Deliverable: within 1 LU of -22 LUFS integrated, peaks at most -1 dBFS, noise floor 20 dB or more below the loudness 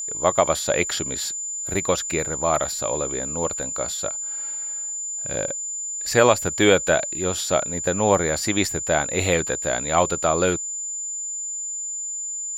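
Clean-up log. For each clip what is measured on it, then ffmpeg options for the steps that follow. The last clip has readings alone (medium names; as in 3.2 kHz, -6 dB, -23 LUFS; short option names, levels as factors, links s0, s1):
steady tone 7.1 kHz; tone level -27 dBFS; loudness -22.5 LUFS; peak level -2.5 dBFS; loudness target -22.0 LUFS
-> -af "bandreject=f=7100:w=30"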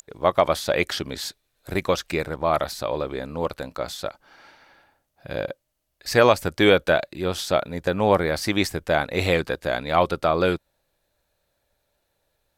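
steady tone not found; loudness -23.5 LUFS; peak level -3.0 dBFS; loudness target -22.0 LUFS
-> -af "volume=1.19"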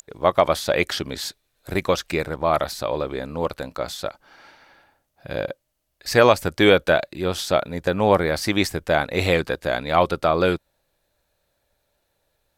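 loudness -22.0 LUFS; peak level -1.5 dBFS; noise floor -73 dBFS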